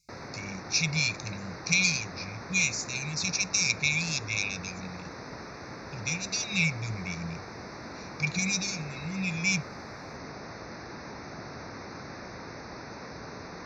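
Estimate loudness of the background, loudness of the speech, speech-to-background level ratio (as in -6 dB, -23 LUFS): -42.0 LUFS, -28.5 LUFS, 13.5 dB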